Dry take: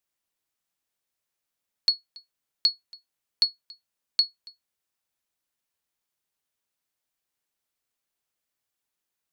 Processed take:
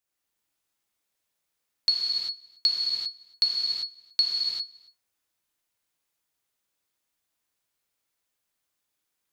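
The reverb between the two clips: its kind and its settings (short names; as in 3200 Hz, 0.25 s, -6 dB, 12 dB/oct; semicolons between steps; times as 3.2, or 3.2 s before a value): non-linear reverb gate 0.42 s flat, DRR -4.5 dB; gain -2 dB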